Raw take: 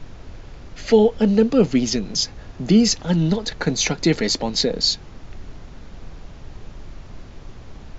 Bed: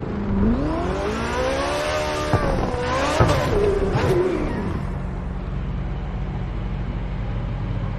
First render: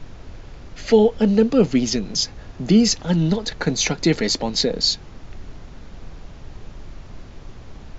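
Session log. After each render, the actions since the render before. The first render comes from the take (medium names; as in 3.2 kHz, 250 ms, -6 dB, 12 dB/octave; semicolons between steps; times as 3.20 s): no audible change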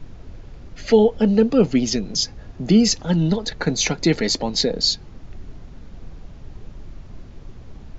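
noise reduction 6 dB, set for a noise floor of -41 dBFS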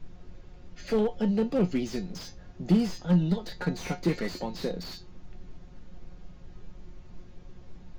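feedback comb 180 Hz, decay 0.19 s, harmonics all, mix 80%; slew-rate limiter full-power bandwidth 36 Hz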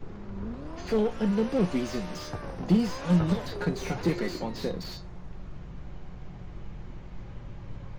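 add bed -17.5 dB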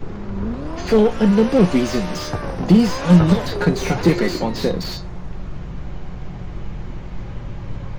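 trim +11.5 dB; peak limiter -2 dBFS, peak gain reduction 2 dB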